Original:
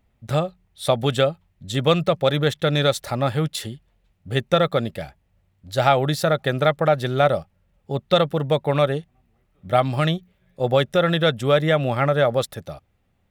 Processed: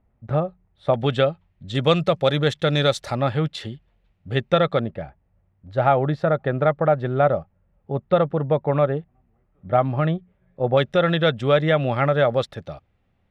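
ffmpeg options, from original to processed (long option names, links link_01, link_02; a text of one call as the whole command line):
ffmpeg -i in.wav -af "asetnsamples=nb_out_samples=441:pad=0,asendcmd='0.94 lowpass f 3400;1.75 lowpass f 7100;3.15 lowpass f 3700;4.79 lowpass f 1500;10.77 lowpass f 3900',lowpass=1400" out.wav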